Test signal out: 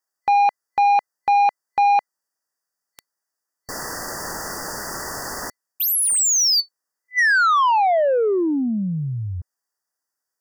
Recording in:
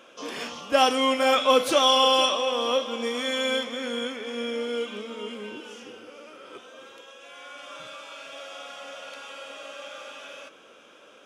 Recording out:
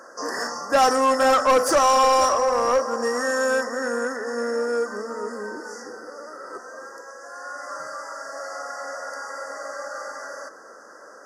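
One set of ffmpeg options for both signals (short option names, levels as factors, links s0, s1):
-filter_complex "[0:a]afftfilt=real='re*(1-between(b*sr/4096,2000,4500))':imag='im*(1-between(b*sr/4096,2000,4500))':win_size=4096:overlap=0.75,asplit=2[s0][s1];[s1]highpass=f=720:p=1,volume=8.91,asoftclip=type=tanh:threshold=0.473[s2];[s0][s2]amix=inputs=2:normalize=0,lowpass=f=7400:p=1,volume=0.501,volume=0.75"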